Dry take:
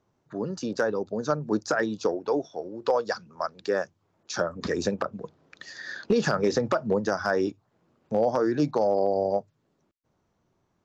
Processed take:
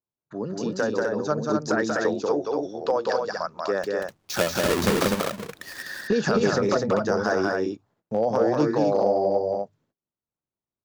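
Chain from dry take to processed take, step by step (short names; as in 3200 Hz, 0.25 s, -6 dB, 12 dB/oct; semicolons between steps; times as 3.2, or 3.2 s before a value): 3.83–5.83 half-waves squared off; gate -59 dBFS, range -26 dB; loudspeakers at several distances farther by 64 m -3 dB, 86 m -4 dB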